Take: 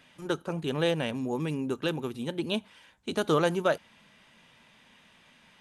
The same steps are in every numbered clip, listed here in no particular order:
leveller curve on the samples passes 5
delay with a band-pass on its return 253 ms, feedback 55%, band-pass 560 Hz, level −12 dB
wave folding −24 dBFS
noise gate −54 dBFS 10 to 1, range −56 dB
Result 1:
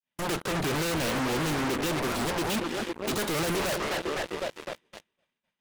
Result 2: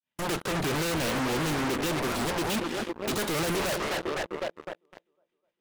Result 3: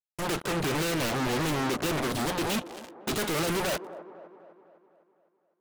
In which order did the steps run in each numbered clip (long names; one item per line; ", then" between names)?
delay with a band-pass on its return, then noise gate, then leveller curve on the samples, then wave folding
noise gate, then delay with a band-pass on its return, then leveller curve on the samples, then wave folding
leveller curve on the samples, then wave folding, then noise gate, then delay with a band-pass on its return